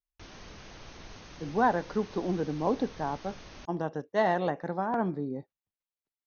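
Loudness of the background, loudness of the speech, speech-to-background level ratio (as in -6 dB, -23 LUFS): -48.5 LUFS, -31.0 LUFS, 17.5 dB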